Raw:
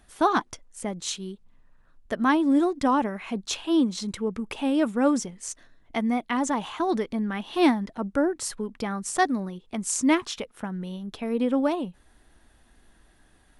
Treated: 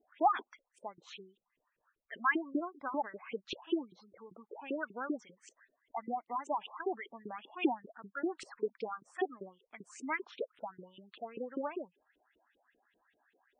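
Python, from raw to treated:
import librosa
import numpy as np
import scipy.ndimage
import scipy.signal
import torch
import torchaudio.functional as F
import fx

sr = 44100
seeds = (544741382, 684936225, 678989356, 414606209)

y = fx.leveller(x, sr, passes=2, at=(8.26, 8.68))
y = fx.filter_lfo_bandpass(y, sr, shape='saw_up', hz=5.1, low_hz=360.0, high_hz=3100.0, q=4.6)
y = fx.spec_gate(y, sr, threshold_db=-15, keep='strong')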